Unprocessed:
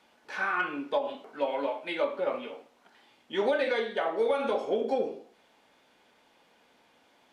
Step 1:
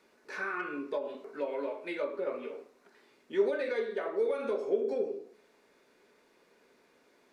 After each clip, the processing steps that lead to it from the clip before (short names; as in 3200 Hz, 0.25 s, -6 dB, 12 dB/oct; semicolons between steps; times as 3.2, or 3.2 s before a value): thirty-one-band EQ 100 Hz -10 dB, 400 Hz +11 dB, 800 Hz -9 dB, 3150 Hz -11 dB; in parallel at +2.5 dB: compressor, threshold -35 dBFS, peak gain reduction 19 dB; on the sum: de-hum 53.73 Hz, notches 30; gain -8.5 dB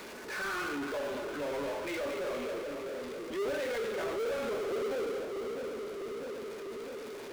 split-band echo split 520 Hz, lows 0.649 s, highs 0.229 s, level -11 dB; transient shaper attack -6 dB, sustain +1 dB; power-law curve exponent 0.35; gain -7.5 dB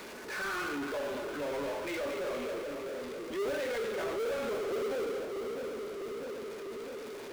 block floating point 5-bit